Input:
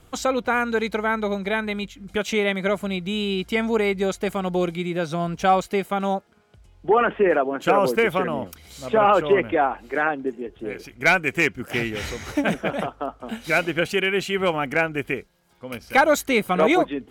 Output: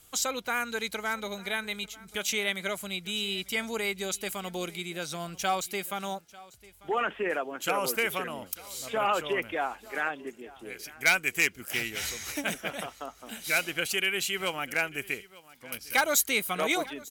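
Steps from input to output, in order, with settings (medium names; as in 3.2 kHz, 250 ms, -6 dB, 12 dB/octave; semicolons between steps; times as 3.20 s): pre-emphasis filter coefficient 0.9; delay 895 ms -21 dB; trim +6 dB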